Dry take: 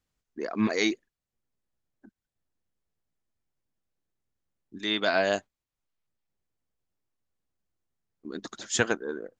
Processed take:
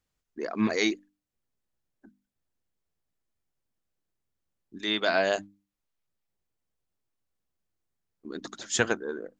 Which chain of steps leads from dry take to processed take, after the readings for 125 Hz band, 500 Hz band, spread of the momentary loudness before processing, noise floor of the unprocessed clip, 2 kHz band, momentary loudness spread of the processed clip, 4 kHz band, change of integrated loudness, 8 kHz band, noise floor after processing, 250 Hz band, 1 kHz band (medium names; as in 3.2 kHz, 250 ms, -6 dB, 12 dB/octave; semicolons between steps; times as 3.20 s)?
-1.0 dB, 0.0 dB, 16 LU, under -85 dBFS, 0.0 dB, 15 LU, 0.0 dB, 0.0 dB, 0.0 dB, -84 dBFS, -0.5 dB, 0.0 dB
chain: hum notches 50/100/150/200/250/300 Hz